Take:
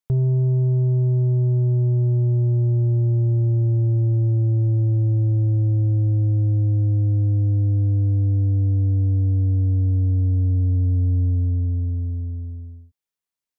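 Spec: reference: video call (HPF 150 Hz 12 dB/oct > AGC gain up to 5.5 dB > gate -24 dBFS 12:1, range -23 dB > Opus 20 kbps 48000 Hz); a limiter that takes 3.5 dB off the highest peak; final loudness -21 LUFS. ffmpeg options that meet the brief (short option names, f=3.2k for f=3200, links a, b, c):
-af "alimiter=limit=-19.5dB:level=0:latency=1,highpass=150,dynaudnorm=m=5.5dB,agate=range=-23dB:threshold=-24dB:ratio=12,volume=11.5dB" -ar 48000 -c:a libopus -b:a 20k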